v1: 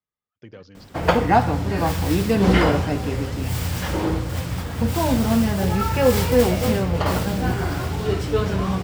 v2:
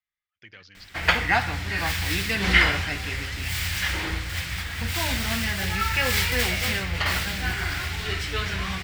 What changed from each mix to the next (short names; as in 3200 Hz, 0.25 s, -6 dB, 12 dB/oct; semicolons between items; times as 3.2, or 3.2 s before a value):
master: add graphic EQ 125/250/500/1000/2000/4000 Hz -10/-10/-12/-6/+10/+4 dB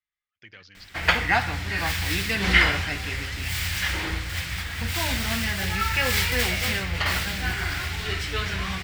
none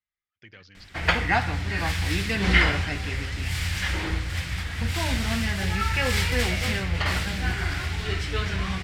background: add LPF 11000 Hz 12 dB/oct; master: add tilt shelf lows +3 dB, about 710 Hz